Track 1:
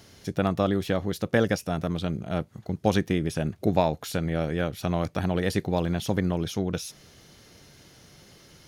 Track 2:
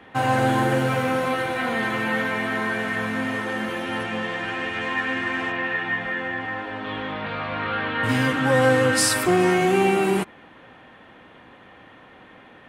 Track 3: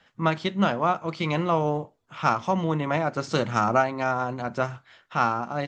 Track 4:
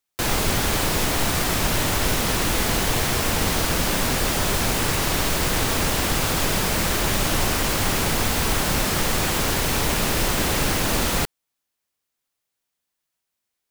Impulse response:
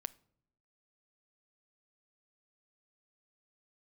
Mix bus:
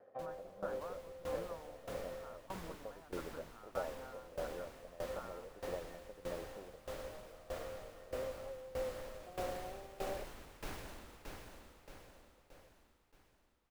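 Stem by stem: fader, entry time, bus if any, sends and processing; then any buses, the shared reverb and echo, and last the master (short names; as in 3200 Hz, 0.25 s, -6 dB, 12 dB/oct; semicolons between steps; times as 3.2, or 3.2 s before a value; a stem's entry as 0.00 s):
-1.0 dB, 0.00 s, bus B, no send, no echo send, dry
-3.0 dB, 0.00 s, muted 2.47–3.79, bus B, no send, no echo send, minimum comb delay 1.6 ms
-15.5 dB, 0.00 s, bus A, no send, no echo send, FFT band-pass 160–1800 Hz; tilt shelf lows -6.5 dB, about 1100 Hz
-15.5 dB, 0.00 s, bus A, no send, echo send -8.5 dB, bell 160 Hz -6 dB 1.2 oct; auto duck -12 dB, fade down 0.30 s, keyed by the first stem
bus A: 0.0 dB, limiter -32.5 dBFS, peak gain reduction 8 dB
bus B: 0.0 dB, band-pass 540 Hz, Q 5.1; compressor, threshold -35 dBFS, peak gain reduction 13 dB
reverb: off
echo: feedback echo 0.622 s, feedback 49%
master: high shelf 2700 Hz -8.5 dB; dB-ramp tremolo decaying 1.6 Hz, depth 18 dB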